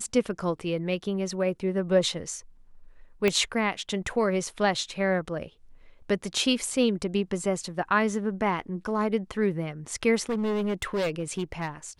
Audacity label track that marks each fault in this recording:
3.280000	3.280000	pop -11 dBFS
10.210000	11.680000	clipped -24 dBFS

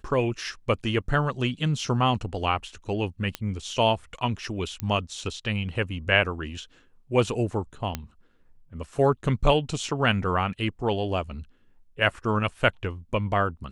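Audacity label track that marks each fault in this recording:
3.350000	3.350000	pop -13 dBFS
4.800000	4.800000	pop -15 dBFS
7.950000	7.950000	pop -13 dBFS

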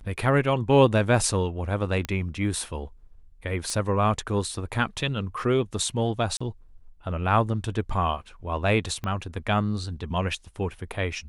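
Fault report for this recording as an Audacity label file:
2.050000	2.050000	pop -14 dBFS
3.700000	3.700000	pop -17 dBFS
6.370000	6.410000	dropout 35 ms
9.040000	9.040000	pop -19 dBFS

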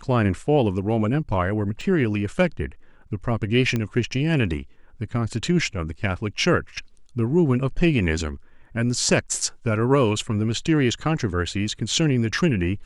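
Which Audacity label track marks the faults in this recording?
1.810000	1.810000	dropout 2.6 ms
3.760000	3.760000	pop -12 dBFS

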